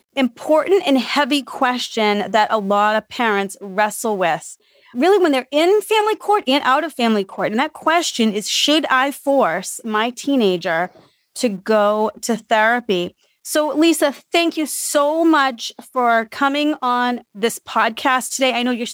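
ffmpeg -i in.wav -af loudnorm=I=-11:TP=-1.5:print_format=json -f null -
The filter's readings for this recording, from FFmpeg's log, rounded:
"input_i" : "-17.7",
"input_tp" : "-3.5",
"input_lra" : "1.5",
"input_thresh" : "-27.9",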